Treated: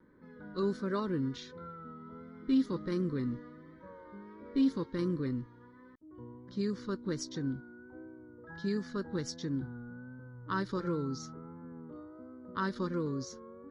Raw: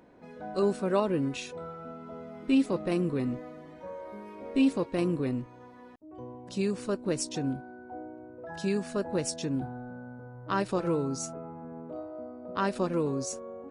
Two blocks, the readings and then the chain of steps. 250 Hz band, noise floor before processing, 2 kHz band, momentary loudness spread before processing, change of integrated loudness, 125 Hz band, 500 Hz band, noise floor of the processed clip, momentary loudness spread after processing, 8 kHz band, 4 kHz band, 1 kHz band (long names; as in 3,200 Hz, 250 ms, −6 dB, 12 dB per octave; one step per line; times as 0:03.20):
−3.5 dB, −50 dBFS, −4.0 dB, 17 LU, −4.5 dB, −3.0 dB, −7.5 dB, −56 dBFS, 19 LU, −10.5 dB, −5.0 dB, −6.5 dB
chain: low-pass that shuts in the quiet parts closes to 2,200 Hz, open at −23 dBFS
phaser with its sweep stopped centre 2,600 Hz, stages 6
pitch vibrato 1.4 Hz 47 cents
level −2 dB